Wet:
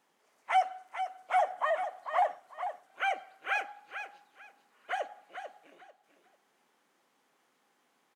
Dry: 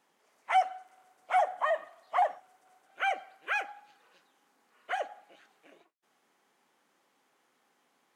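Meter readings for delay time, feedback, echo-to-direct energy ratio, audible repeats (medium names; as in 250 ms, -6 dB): 444 ms, 22%, -9.0 dB, 2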